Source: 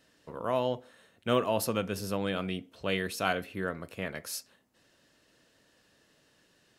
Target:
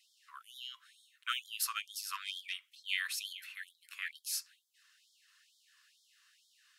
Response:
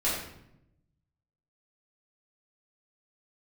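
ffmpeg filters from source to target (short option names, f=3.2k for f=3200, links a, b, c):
-filter_complex "[0:a]asplit=3[a][b][c];[a]afade=t=out:st=2.12:d=0.02[d];[b]aeval=exprs='0.133*(cos(1*acos(clip(val(0)/0.133,-1,1)))-cos(1*PI/2))+0.0119*(cos(5*acos(clip(val(0)/0.133,-1,1)))-cos(5*PI/2))':c=same,afade=t=in:st=2.12:d=0.02,afade=t=out:st=2.52:d=0.02[e];[c]afade=t=in:st=2.52:d=0.02[f];[d][e][f]amix=inputs=3:normalize=0,afftfilt=real='re*gte(b*sr/1024,960*pow(3200/960,0.5+0.5*sin(2*PI*2.2*pts/sr)))':imag='im*gte(b*sr/1024,960*pow(3200/960,0.5+0.5*sin(2*PI*2.2*pts/sr)))':win_size=1024:overlap=0.75,volume=1dB"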